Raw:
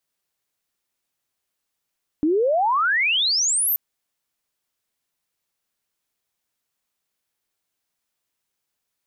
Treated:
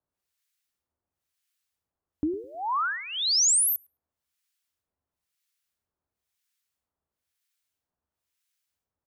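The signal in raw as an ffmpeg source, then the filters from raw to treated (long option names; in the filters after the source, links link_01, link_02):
-f lavfi -i "aevalsrc='pow(10,(-16-2*t/1.53)/20)*sin(2*PI*290*1.53/log(14000/290)*(exp(log(14000/290)*t/1.53)-1))':duration=1.53:sample_rate=44100"
-filter_complex "[0:a]equalizer=frequency=77:width=2.3:gain=14.5,acrossover=split=1300[link_01][link_02];[link_01]aeval=exprs='val(0)*(1-1/2+1/2*cos(2*PI*1*n/s))':channel_layout=same[link_03];[link_02]aeval=exprs='val(0)*(1-1/2-1/2*cos(2*PI*1*n/s))':channel_layout=same[link_04];[link_03][link_04]amix=inputs=2:normalize=0,asplit=2[link_05][link_06];[link_06]adelay=105,lowpass=frequency=2200:poles=1,volume=-18dB,asplit=2[link_07][link_08];[link_08]adelay=105,lowpass=frequency=2200:poles=1,volume=0.35,asplit=2[link_09][link_10];[link_10]adelay=105,lowpass=frequency=2200:poles=1,volume=0.35[link_11];[link_05][link_07][link_09][link_11]amix=inputs=4:normalize=0"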